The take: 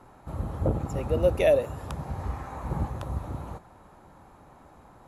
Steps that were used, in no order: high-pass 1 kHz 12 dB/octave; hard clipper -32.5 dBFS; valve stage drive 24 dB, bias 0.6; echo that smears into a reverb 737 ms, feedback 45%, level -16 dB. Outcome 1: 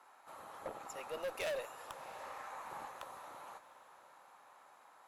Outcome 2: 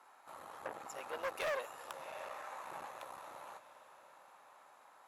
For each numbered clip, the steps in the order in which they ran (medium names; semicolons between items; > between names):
high-pass > hard clipper > echo that smears into a reverb > valve stage; echo that smears into a reverb > valve stage > high-pass > hard clipper